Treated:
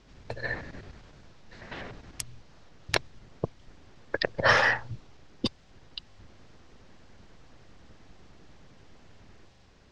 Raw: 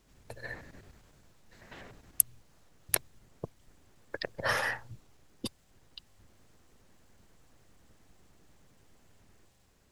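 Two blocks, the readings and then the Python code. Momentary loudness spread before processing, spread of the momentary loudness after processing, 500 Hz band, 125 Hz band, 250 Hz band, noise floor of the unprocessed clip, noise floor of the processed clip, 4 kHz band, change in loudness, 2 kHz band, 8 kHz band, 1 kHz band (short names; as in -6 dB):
24 LU, 22 LU, +9.0 dB, +9.0 dB, +9.0 dB, -65 dBFS, -57 dBFS, +8.5 dB, +4.5 dB, +9.0 dB, -9.5 dB, +9.0 dB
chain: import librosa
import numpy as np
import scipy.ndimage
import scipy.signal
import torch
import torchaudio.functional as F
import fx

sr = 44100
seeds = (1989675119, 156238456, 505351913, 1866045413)

y = scipy.signal.sosfilt(scipy.signal.butter(4, 5600.0, 'lowpass', fs=sr, output='sos'), x)
y = y * 10.0 ** (9.0 / 20.0)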